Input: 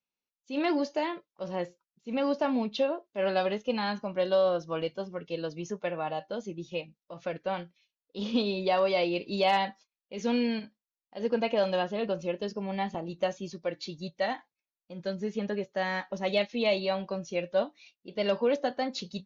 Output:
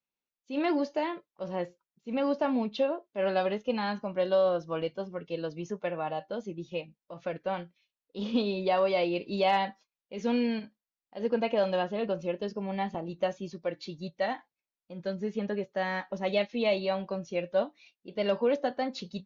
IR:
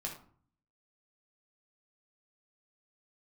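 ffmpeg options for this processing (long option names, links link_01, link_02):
-af "highshelf=frequency=4600:gain=-9"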